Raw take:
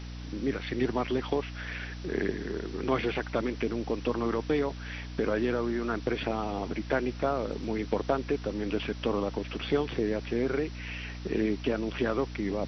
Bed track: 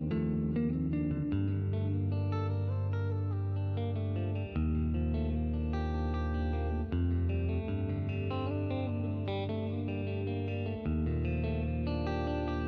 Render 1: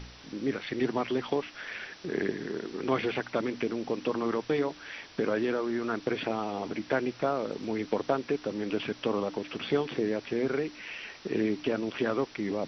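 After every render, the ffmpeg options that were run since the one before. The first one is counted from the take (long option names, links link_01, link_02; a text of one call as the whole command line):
ffmpeg -i in.wav -af "bandreject=frequency=60:width_type=h:width=4,bandreject=frequency=120:width_type=h:width=4,bandreject=frequency=180:width_type=h:width=4,bandreject=frequency=240:width_type=h:width=4,bandreject=frequency=300:width_type=h:width=4" out.wav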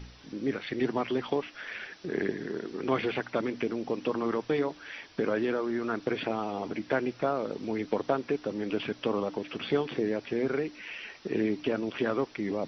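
ffmpeg -i in.wav -af "afftdn=noise_reduction=6:noise_floor=-50" out.wav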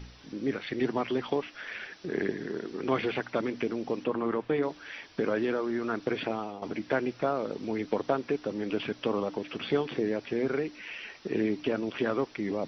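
ffmpeg -i in.wav -filter_complex "[0:a]asettb=1/sr,asplit=3[link_01][link_02][link_03];[link_01]atrim=end=4.044[link_04];[link_02]atrim=start=4.04:end=4.63,asetpts=PTS-STARTPTS,afade=type=in:duration=0.004:curve=qsin,afade=type=out:start_time=0.586:duration=0.004:curve=qsin,lowpass=2800[link_05];[link_03]atrim=start=4.626[link_06];[link_04][link_05]acrossfade=duration=0.004:curve1=hsin:curve2=qsin[link_07];[link_07][link_06]acrossfade=duration=0.004:curve1=qsin:curve2=hsin,asplit=2[link_08][link_09];[link_08]atrim=end=6.62,asetpts=PTS-STARTPTS,afade=type=out:start_time=6.18:duration=0.44:curve=qsin:silence=0.266073[link_10];[link_09]atrim=start=6.62,asetpts=PTS-STARTPTS,afade=type=in:duration=0.004:curve=hsin:silence=0.266073[link_11];[link_10][link_11]concat=n=2:v=0:a=1" out.wav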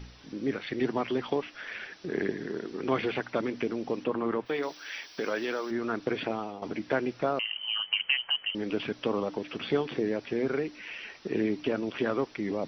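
ffmpeg -i in.wav -filter_complex "[0:a]asplit=3[link_01][link_02][link_03];[link_01]afade=type=out:start_time=4.45:duration=0.02[link_04];[link_02]aemphasis=mode=production:type=riaa,afade=type=in:start_time=4.45:duration=0.02,afade=type=out:start_time=5.7:duration=0.02[link_05];[link_03]afade=type=in:start_time=5.7:duration=0.02[link_06];[link_04][link_05][link_06]amix=inputs=3:normalize=0,asettb=1/sr,asplit=3[link_07][link_08][link_09];[link_07]atrim=end=7.394[link_10];[link_08]atrim=start=7.39:end=8.55,asetpts=PTS-STARTPTS,afade=type=in:duration=0.004:curve=qsin,afade=type=out:start_time=1.156:duration=0.004:curve=qsin,lowpass=frequency=2800:width_type=q:width=0.5098,lowpass=frequency=2800:width_type=q:width=0.6013,lowpass=frequency=2800:width_type=q:width=0.9,lowpass=frequency=2800:width_type=q:width=2.563,afreqshift=-3300[link_11];[link_09]atrim=start=8.546[link_12];[link_10][link_11]acrossfade=duration=0.004:curve1=hsin:curve2=qsin[link_13];[link_13][link_12]acrossfade=duration=0.004:curve1=qsin:curve2=hsin" out.wav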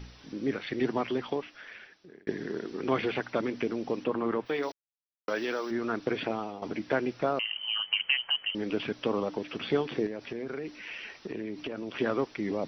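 ffmpeg -i in.wav -filter_complex "[0:a]asettb=1/sr,asplit=3[link_01][link_02][link_03];[link_01]atrim=end=10.064[link_04];[link_02]atrim=start=10.06:end=11.94,asetpts=PTS-STARTPTS,afade=type=in:duration=0.004:curve=qsin,afade=type=out:start_time=1.876:duration=0.004:curve=qsin,acompressor=threshold=-32dB:ratio=6:attack=3.2:release=140:knee=1:detection=peak[link_05];[link_03]atrim=start=11.936[link_06];[link_04][link_05]acrossfade=duration=0.004:curve1=hsin:curve2=qsin[link_07];[link_07][link_06]acrossfade=duration=0.004:curve1=qsin:curve2=hsin,asplit=4[link_08][link_09][link_10][link_11];[link_08]atrim=end=2.27,asetpts=PTS-STARTPTS,afade=type=out:start_time=1:duration=1.27[link_12];[link_09]atrim=start=2.27:end=4.72,asetpts=PTS-STARTPTS,afade=type=in:duration=0.004:curve=hsin,afade=type=out:start_time=2.446:duration=0.004:curve=hsin[link_13];[link_10]atrim=start=4.72:end=5.28,asetpts=PTS-STARTPTS,volume=0[link_14];[link_11]atrim=start=5.28,asetpts=PTS-STARTPTS,afade=type=in:duration=0.004:curve=hsin[link_15];[link_12][link_13][link_14][link_15]concat=n=4:v=0:a=1" out.wav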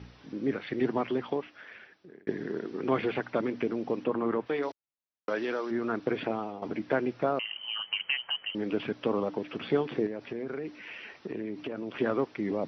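ffmpeg -i in.wav -af "highpass=76,aemphasis=mode=reproduction:type=75fm" out.wav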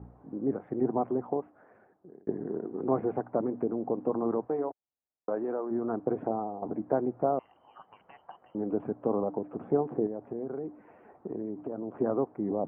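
ffmpeg -i in.wav -af "lowpass=frequency=1000:width=0.5412,lowpass=frequency=1000:width=1.3066,equalizer=frequency=740:width_type=o:width=0.22:gain=6" out.wav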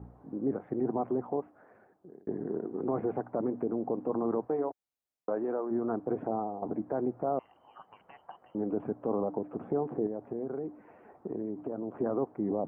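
ffmpeg -i in.wav -af "alimiter=limit=-21dB:level=0:latency=1:release=22" out.wav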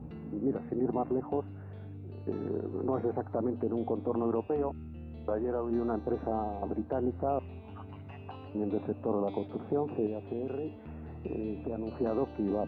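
ffmpeg -i in.wav -i bed.wav -filter_complex "[1:a]volume=-12.5dB[link_01];[0:a][link_01]amix=inputs=2:normalize=0" out.wav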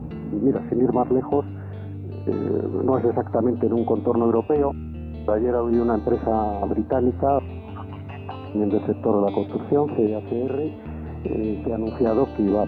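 ffmpeg -i in.wav -af "volume=11dB" out.wav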